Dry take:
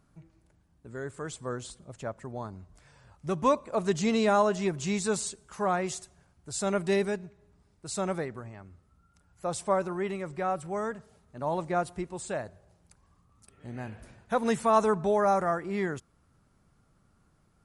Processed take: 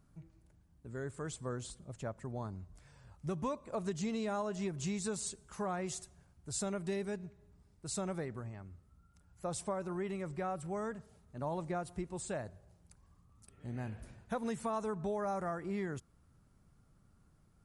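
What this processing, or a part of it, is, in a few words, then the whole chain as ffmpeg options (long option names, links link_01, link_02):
ASMR close-microphone chain: -af "lowshelf=frequency=240:gain=7.5,acompressor=threshold=-28dB:ratio=5,highshelf=frequency=6600:gain=4.5,volume=-6dB"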